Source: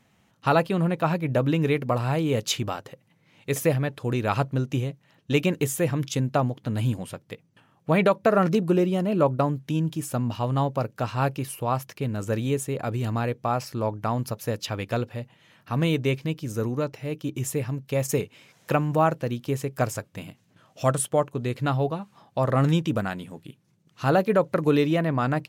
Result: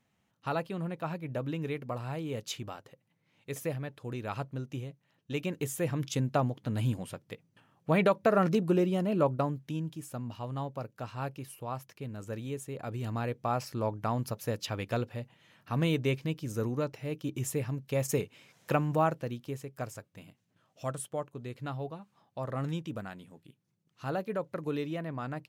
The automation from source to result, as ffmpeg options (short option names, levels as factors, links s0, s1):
-af "volume=1.26,afade=t=in:st=5.37:d=0.8:silence=0.446684,afade=t=out:st=9.11:d=0.89:silence=0.446684,afade=t=in:st=12.61:d=0.98:silence=0.446684,afade=t=out:st=18.89:d=0.76:silence=0.398107"